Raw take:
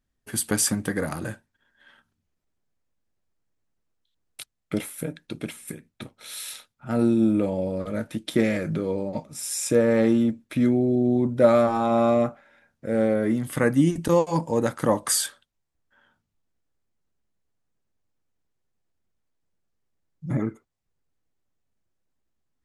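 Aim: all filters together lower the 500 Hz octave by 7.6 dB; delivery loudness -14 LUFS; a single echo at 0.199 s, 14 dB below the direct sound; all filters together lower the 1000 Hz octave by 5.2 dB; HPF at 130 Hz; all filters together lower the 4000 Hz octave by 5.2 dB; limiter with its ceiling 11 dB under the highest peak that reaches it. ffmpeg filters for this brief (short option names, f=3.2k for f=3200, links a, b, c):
-af "highpass=130,equalizer=f=500:t=o:g=-8.5,equalizer=f=1k:t=o:g=-3.5,equalizer=f=4k:t=o:g=-6.5,alimiter=limit=-22.5dB:level=0:latency=1,aecho=1:1:199:0.2,volume=18.5dB"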